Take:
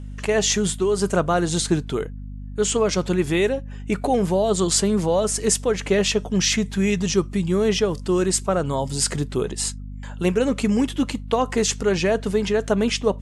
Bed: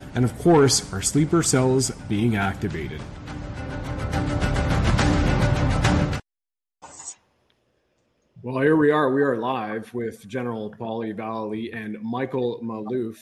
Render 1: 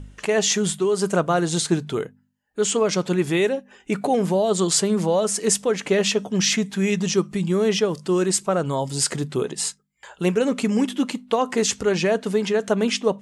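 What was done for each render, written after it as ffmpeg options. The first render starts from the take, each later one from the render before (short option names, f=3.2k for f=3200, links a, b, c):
-af "bandreject=f=50:t=h:w=4,bandreject=f=100:t=h:w=4,bandreject=f=150:t=h:w=4,bandreject=f=200:t=h:w=4,bandreject=f=250:t=h:w=4"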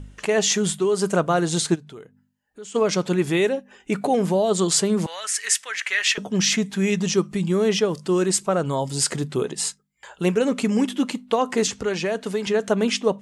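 -filter_complex "[0:a]asplit=3[a][b][c];[a]afade=t=out:st=1.74:d=0.02[d];[b]acompressor=threshold=-50dB:ratio=2:attack=3.2:release=140:knee=1:detection=peak,afade=t=in:st=1.74:d=0.02,afade=t=out:st=2.74:d=0.02[e];[c]afade=t=in:st=2.74:d=0.02[f];[d][e][f]amix=inputs=3:normalize=0,asettb=1/sr,asplit=3[g][h][i];[g]atrim=end=5.064[j];[h]atrim=start=5.06:end=6.18,asetpts=PTS-STARTPTS,afade=t=in:d=0.004:c=qsin,afade=t=out:st=1.116:d=0.004:c=qsin,highpass=f=1.8k:t=q:w=2.8[k];[i]atrim=start=6.176[l];[j][k]acrossfade=d=0.004:c1=hsin:c2=qsin[m];[m][l]acrossfade=d=0.004:c1=qsin:c2=hsin,asettb=1/sr,asplit=3[n][o][p];[n]atrim=end=11.674[q];[o]atrim=start=11.67:end=12.47,asetpts=PTS-STARTPTS,afade=t=in:d=0.004:c=qsin,afade=t=out:st=0.796:d=0.004:c=qsin,acrossover=split=350|1400|6800[r][s][t][u];[r]acompressor=threshold=-31dB:ratio=3[v];[s]acompressor=threshold=-25dB:ratio=3[w];[t]acompressor=threshold=-30dB:ratio=3[x];[u]acompressor=threshold=-43dB:ratio=3[y];[v][w][x][y]amix=inputs=4:normalize=0[z];[p]atrim=start=12.466[aa];[q][z]acrossfade=d=0.004:c1=hsin:c2=qsin[ab];[ab][aa]acrossfade=d=0.004:c1=qsin:c2=hsin"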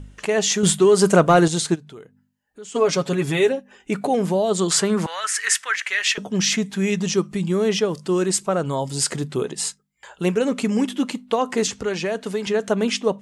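-filter_complex "[0:a]asettb=1/sr,asplit=3[a][b][c];[a]atrim=end=0.634[d];[b]atrim=start=0.63:end=1.48,asetpts=PTS-STARTPTS,afade=t=in:d=0.004:c=qsin,afade=t=out:st=0.846:d=0.004:c=qsin,acontrast=81[e];[c]atrim=start=1.476[f];[d][e]acrossfade=d=0.004:c1=hsin:c2=qsin[g];[g][f]acrossfade=d=0.004:c1=qsin:c2=hsin,asettb=1/sr,asplit=3[h][i][j];[h]atrim=end=2.684[k];[i]atrim=start=2.68:end=3.52,asetpts=PTS-STARTPTS,afade=t=in:d=0.004:c=qsin,afade=t=out:st=0.836:d=0.004:c=qsin,aecho=1:1:7.3:0.65,atrim=end_sample=37044[l];[j]atrim=start=3.516[m];[k][l]acrossfade=d=0.004:c1=hsin:c2=qsin[n];[n][m]acrossfade=d=0.004:c1=qsin:c2=hsin,asettb=1/sr,asplit=3[o][p][q];[o]atrim=end=4.704[r];[p]atrim=start=4.7:end=5.76,asetpts=PTS-STARTPTS,afade=t=in:d=0.004:c=qsin,afade=t=out:st=1.056:d=0.004:c=qsin,equalizer=f=1.4k:t=o:w=1.4:g=9.5[s];[q]atrim=start=5.756[t];[r][s]acrossfade=d=0.004:c1=hsin:c2=qsin[u];[u][t]acrossfade=d=0.004:c1=qsin:c2=hsin"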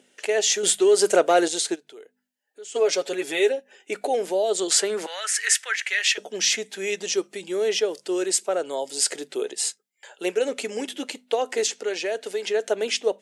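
-af "highpass=f=380:w=0.5412,highpass=f=380:w=1.3066,equalizer=f=1.1k:w=2.5:g=-13"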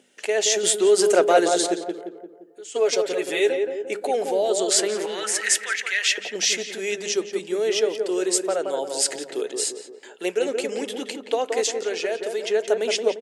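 -filter_complex "[0:a]asplit=2[a][b];[b]adelay=174,lowpass=f=1.2k:p=1,volume=-4dB,asplit=2[c][d];[d]adelay=174,lowpass=f=1.2k:p=1,volume=0.54,asplit=2[e][f];[f]adelay=174,lowpass=f=1.2k:p=1,volume=0.54,asplit=2[g][h];[h]adelay=174,lowpass=f=1.2k:p=1,volume=0.54,asplit=2[i][j];[j]adelay=174,lowpass=f=1.2k:p=1,volume=0.54,asplit=2[k][l];[l]adelay=174,lowpass=f=1.2k:p=1,volume=0.54,asplit=2[m][n];[n]adelay=174,lowpass=f=1.2k:p=1,volume=0.54[o];[a][c][e][g][i][k][m][o]amix=inputs=8:normalize=0"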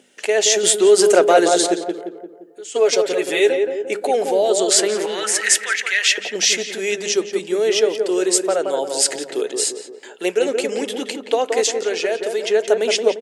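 -af "volume=5dB,alimiter=limit=-2dB:level=0:latency=1"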